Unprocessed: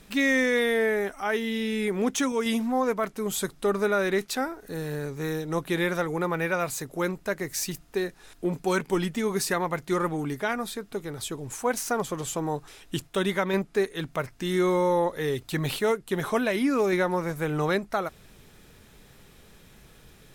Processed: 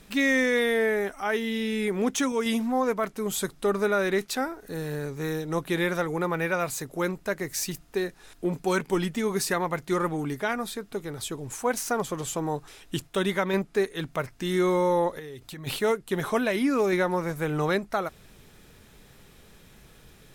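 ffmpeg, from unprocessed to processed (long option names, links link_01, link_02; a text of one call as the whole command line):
ffmpeg -i in.wav -filter_complex "[0:a]asplit=3[link_01][link_02][link_03];[link_01]afade=type=out:start_time=15.18:duration=0.02[link_04];[link_02]acompressor=threshold=-38dB:ratio=6:attack=3.2:release=140:knee=1:detection=peak,afade=type=in:start_time=15.18:duration=0.02,afade=type=out:start_time=15.66:duration=0.02[link_05];[link_03]afade=type=in:start_time=15.66:duration=0.02[link_06];[link_04][link_05][link_06]amix=inputs=3:normalize=0" out.wav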